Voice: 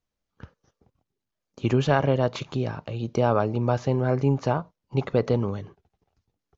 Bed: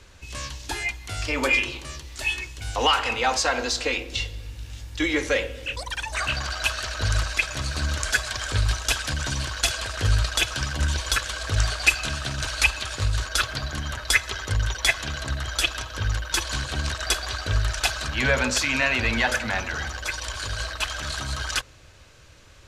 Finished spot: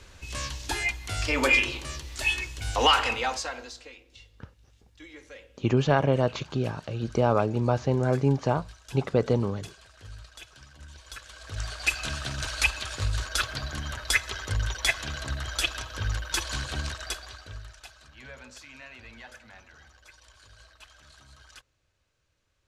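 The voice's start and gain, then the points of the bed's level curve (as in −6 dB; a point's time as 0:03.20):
4.00 s, −1.0 dB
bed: 0:03.03 0 dB
0:03.97 −23.5 dB
0:10.87 −23.5 dB
0:12.07 −4 dB
0:16.77 −4 dB
0:17.87 −24 dB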